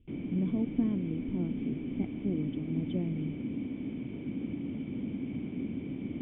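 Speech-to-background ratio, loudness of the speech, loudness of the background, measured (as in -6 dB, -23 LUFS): 1.5 dB, -35.5 LUFS, -37.0 LUFS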